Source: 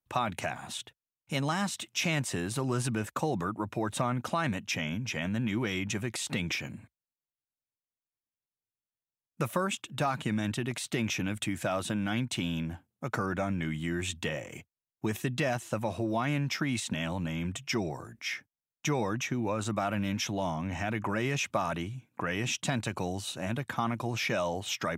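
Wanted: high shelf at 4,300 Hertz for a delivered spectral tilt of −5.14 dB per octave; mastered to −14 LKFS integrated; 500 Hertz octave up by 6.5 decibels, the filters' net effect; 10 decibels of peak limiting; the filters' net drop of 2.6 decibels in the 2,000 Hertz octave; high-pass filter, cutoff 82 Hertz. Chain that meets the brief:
high-pass filter 82 Hz
parametric band 500 Hz +8.5 dB
parametric band 2,000 Hz −3 dB
high-shelf EQ 4,300 Hz −3.5 dB
level +19 dB
brickwall limiter −3 dBFS

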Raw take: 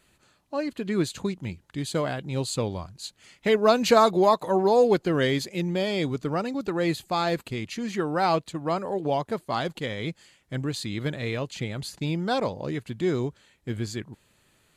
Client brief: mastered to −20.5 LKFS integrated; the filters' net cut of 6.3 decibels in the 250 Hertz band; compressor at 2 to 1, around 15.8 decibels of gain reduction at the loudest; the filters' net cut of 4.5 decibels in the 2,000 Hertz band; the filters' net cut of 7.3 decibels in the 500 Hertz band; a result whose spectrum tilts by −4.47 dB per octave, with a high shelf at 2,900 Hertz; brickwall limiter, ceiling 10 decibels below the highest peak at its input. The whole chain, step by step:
parametric band 250 Hz −6.5 dB
parametric band 500 Hz −7.5 dB
parametric band 2,000 Hz −7.5 dB
high-shelf EQ 2,900 Hz +6 dB
downward compressor 2 to 1, threshold −48 dBFS
level +24 dB
brickwall limiter −10.5 dBFS

